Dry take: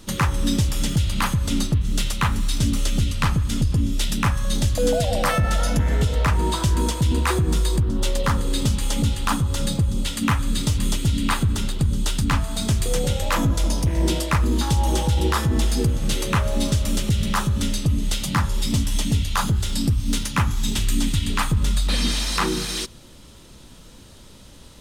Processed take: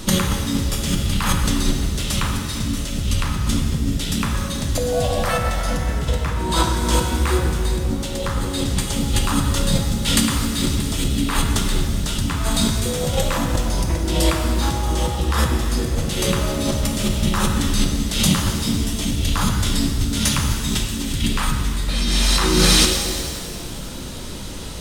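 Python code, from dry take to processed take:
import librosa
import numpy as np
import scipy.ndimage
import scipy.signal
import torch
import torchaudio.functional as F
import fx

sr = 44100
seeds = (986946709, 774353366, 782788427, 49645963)

y = fx.over_compress(x, sr, threshold_db=-27.0, ratio=-1.0)
y = fx.rev_shimmer(y, sr, seeds[0], rt60_s=2.0, semitones=7, shimmer_db=-8, drr_db=2.5)
y = y * librosa.db_to_amplitude(6.0)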